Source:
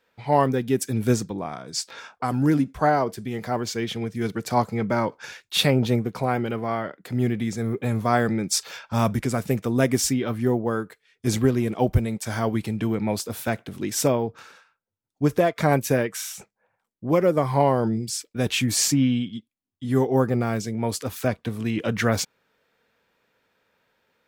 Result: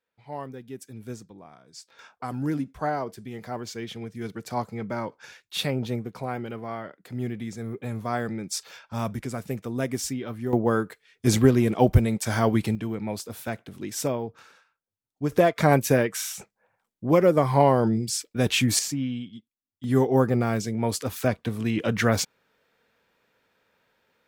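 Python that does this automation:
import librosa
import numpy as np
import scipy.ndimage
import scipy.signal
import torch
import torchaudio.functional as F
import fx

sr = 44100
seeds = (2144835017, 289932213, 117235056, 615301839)

y = fx.gain(x, sr, db=fx.steps((0.0, -16.5), (1.99, -7.5), (10.53, 2.5), (12.75, -6.0), (15.32, 1.0), (18.79, -8.5), (19.84, 0.0)))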